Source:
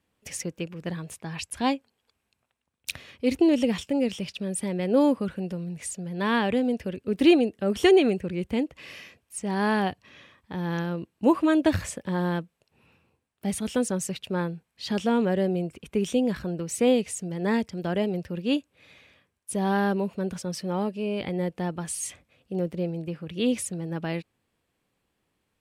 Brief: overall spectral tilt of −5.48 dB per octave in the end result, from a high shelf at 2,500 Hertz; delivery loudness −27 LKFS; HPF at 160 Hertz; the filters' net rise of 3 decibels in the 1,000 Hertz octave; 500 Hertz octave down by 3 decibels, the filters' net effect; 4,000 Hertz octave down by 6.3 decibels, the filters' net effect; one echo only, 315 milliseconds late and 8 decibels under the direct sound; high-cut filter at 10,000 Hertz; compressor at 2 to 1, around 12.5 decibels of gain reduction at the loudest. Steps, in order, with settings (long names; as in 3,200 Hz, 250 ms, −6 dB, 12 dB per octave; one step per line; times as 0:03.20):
high-pass filter 160 Hz
low-pass filter 10,000 Hz
parametric band 500 Hz −5 dB
parametric band 1,000 Hz +6.5 dB
high-shelf EQ 2,500 Hz −5 dB
parametric band 4,000 Hz −5 dB
downward compressor 2 to 1, threshold −40 dBFS
single-tap delay 315 ms −8 dB
level +11 dB